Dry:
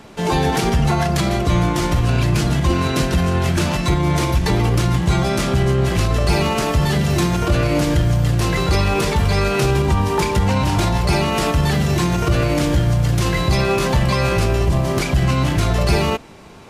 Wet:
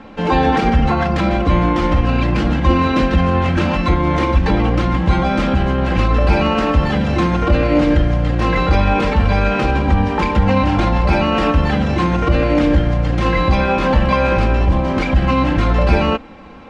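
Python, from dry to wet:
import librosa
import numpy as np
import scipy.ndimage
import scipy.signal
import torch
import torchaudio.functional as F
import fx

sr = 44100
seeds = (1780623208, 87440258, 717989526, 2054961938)

y = scipy.signal.sosfilt(scipy.signal.butter(2, 2500.0, 'lowpass', fs=sr, output='sos'), x)
y = y + 0.68 * np.pad(y, (int(3.8 * sr / 1000.0), 0))[:len(y)]
y = F.gain(torch.from_numpy(y), 2.5).numpy()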